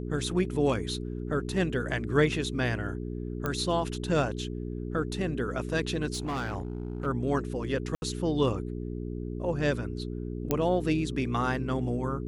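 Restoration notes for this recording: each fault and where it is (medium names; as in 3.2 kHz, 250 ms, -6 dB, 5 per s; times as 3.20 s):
hum 60 Hz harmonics 7 -35 dBFS
3.46 s: pop -16 dBFS
6.13–7.07 s: clipped -28 dBFS
7.95–8.02 s: dropout 71 ms
10.51 s: pop -12 dBFS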